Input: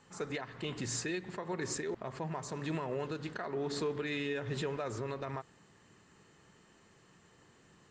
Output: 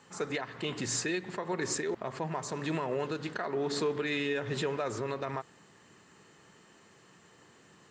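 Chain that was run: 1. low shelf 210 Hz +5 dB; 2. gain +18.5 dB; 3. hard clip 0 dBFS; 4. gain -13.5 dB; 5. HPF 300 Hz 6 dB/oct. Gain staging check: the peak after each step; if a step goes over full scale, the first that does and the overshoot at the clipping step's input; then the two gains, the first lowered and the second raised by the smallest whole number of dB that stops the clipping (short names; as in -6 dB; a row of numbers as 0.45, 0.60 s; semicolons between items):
-24.0, -5.5, -5.5, -19.0, -21.5 dBFS; no overload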